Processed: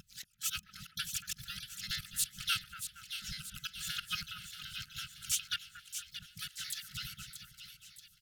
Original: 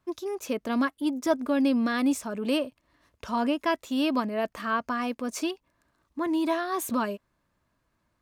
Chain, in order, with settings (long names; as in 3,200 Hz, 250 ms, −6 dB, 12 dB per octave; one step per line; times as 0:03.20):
reversed piece by piece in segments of 83 ms
brick-wall band-stop 170–2,500 Hz
parametric band 440 Hz +5.5 dB 2.8 octaves
harmonic and percussive parts rebalanced harmonic −6 dB
high-shelf EQ 8,200 Hz +7 dB
in parallel at −2 dB: brickwall limiter −29 dBFS, peak gain reduction 10 dB
on the sum: gate pattern "xx..xx.x.xx.x" 139 BPM −24 dB
pitch-shifted copies added −12 semitones −5 dB, +3 semitones −6 dB, +4 semitones −5 dB
on a send: echo with a time of its own for lows and highs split 1,900 Hz, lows 232 ms, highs 630 ms, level −9 dB
on the sum: level −2.5 dB